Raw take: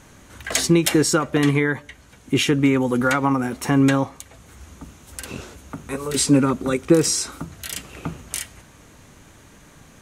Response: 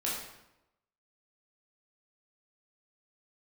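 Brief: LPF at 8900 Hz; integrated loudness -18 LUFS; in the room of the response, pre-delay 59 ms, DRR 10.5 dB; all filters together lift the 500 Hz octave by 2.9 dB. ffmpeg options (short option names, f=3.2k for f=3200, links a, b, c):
-filter_complex "[0:a]lowpass=8.9k,equalizer=f=500:t=o:g=3.5,asplit=2[a][b];[1:a]atrim=start_sample=2205,adelay=59[c];[b][c]afir=irnorm=-1:irlink=0,volume=-16dB[d];[a][d]amix=inputs=2:normalize=0,volume=0.5dB"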